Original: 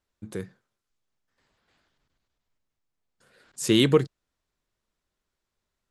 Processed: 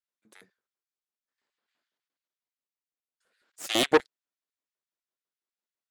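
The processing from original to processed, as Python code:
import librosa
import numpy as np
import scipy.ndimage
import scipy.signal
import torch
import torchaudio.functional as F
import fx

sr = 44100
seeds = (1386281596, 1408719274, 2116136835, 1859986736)

p1 = fx.highpass(x, sr, hz=190.0, slope=6)
p2 = fx.cheby_harmonics(p1, sr, harmonics=(3, 6), levels_db=(-23, -10), full_scale_db=-7.5)
p3 = fx.filter_lfo_highpass(p2, sr, shape='square', hz=6.0, low_hz=270.0, high_hz=1700.0, q=0.82)
p4 = 10.0 ** (-16.5 / 20.0) * np.tanh(p3 / 10.0 ** (-16.5 / 20.0))
p5 = p3 + F.gain(torch.from_numpy(p4), -6.5).numpy()
p6 = fx.upward_expand(p5, sr, threshold_db=-34.0, expansion=1.5)
y = F.gain(torch.from_numpy(p6), -2.5).numpy()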